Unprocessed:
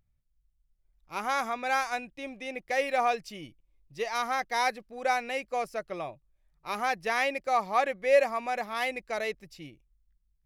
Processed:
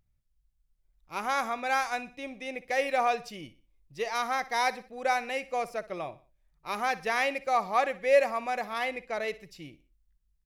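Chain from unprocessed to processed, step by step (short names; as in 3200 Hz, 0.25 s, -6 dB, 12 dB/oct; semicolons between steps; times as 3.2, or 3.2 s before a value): 8.78–9.28 high shelf 4600 Hz -8 dB; feedback echo 61 ms, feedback 41%, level -17.5 dB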